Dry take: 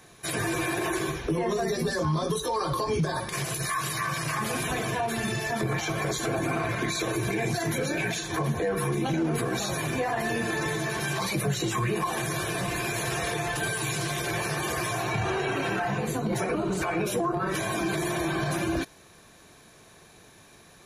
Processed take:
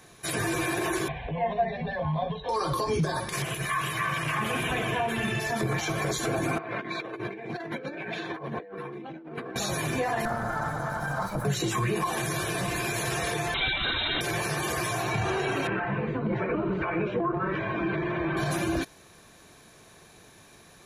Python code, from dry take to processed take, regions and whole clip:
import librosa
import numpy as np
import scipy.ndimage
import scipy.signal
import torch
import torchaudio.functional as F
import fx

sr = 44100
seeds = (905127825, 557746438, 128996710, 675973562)

y = fx.chain(x, sr, fx.steep_lowpass(hz=4600.0, slope=72),
    fx.peak_eq(hz=730.0, db=8.5, octaves=0.31),
    fx.fixed_phaser(hz=1300.0, stages=6), at=(1.08, 2.49))
y = fx.chain(y, sr, fx.high_shelf_res(hz=3700.0, db=-6.0, q=3.0),
    fx.echo_single(ms=122, db=-13.0), at=(3.42, 5.4))
y = fx.chain(y, sr, fx.highpass(hz=240.0, slope=12),
    fx.air_absorb(metres=400.0),
    fx.over_compress(threshold_db=-35.0, ratio=-0.5), at=(6.58, 9.56))
y = fx.chain(y, sr, fx.lower_of_two(delay_ms=1.3),
    fx.high_shelf_res(hz=1800.0, db=-11.5, q=3.0), at=(10.25, 11.45))
y = fx.chain(y, sr, fx.high_shelf(hz=2800.0, db=11.5),
    fx.freq_invert(carrier_hz=3900), at=(13.54, 14.21))
y = fx.chain(y, sr, fx.lowpass(hz=2600.0, slope=24),
    fx.notch(hz=740.0, q=6.6), at=(15.67, 18.37))